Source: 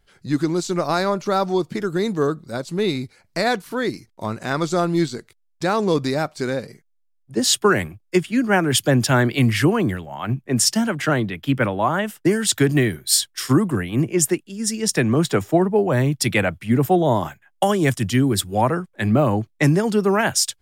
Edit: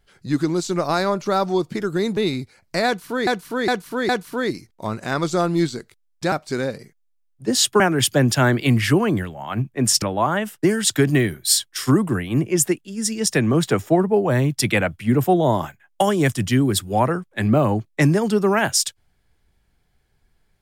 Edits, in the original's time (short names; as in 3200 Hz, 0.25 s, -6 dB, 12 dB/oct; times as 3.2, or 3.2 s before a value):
2.17–2.79 cut
3.48–3.89 loop, 4 plays
5.71–6.21 cut
7.69–8.52 cut
10.74–11.64 cut